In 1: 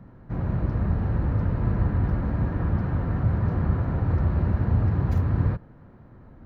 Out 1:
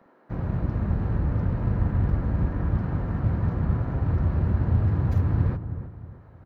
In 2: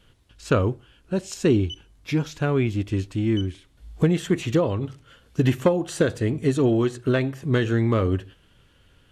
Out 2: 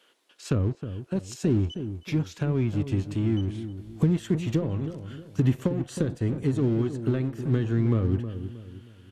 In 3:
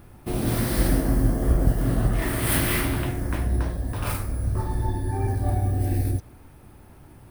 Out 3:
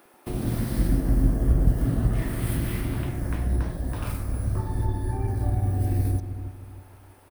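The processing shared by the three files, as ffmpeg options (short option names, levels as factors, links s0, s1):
-filter_complex "[0:a]acrossover=split=310[s0][s1];[s0]aeval=exprs='sgn(val(0))*max(abs(val(0))-0.00944,0)':c=same[s2];[s1]acompressor=threshold=0.0141:ratio=5[s3];[s2][s3]amix=inputs=2:normalize=0,asplit=2[s4][s5];[s5]adelay=315,lowpass=f=1100:p=1,volume=0.316,asplit=2[s6][s7];[s7]adelay=315,lowpass=f=1100:p=1,volume=0.38,asplit=2[s8][s9];[s9]adelay=315,lowpass=f=1100:p=1,volume=0.38,asplit=2[s10][s11];[s11]adelay=315,lowpass=f=1100:p=1,volume=0.38[s12];[s4][s6][s8][s10][s12]amix=inputs=5:normalize=0"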